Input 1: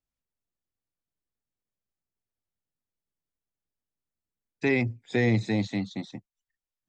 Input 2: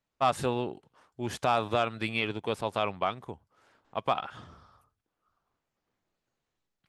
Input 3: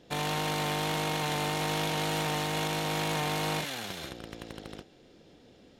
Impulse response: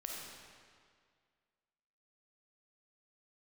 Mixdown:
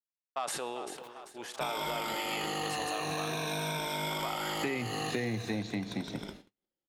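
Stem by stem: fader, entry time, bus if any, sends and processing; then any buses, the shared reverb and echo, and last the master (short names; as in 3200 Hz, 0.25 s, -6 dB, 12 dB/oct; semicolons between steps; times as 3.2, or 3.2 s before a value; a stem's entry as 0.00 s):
+2.0 dB, 0.00 s, send -12 dB, no echo send, low shelf 110 Hz -6.5 dB
-6.0 dB, 0.15 s, send -16 dB, echo send -13.5 dB, HPF 450 Hz 12 dB/oct; sustainer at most 40 dB/s
-2.5 dB, 1.50 s, send -20.5 dB, echo send -19.5 dB, moving spectral ripple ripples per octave 1.6, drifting -0.44 Hz, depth 18 dB; notches 50/100/150/200/250 Hz; gate with hold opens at -45 dBFS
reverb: on, RT60 2.0 s, pre-delay 10 ms
echo: feedback echo 0.391 s, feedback 53%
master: gate -48 dBFS, range -40 dB; compressor 6:1, threshold -31 dBFS, peak gain reduction 13.5 dB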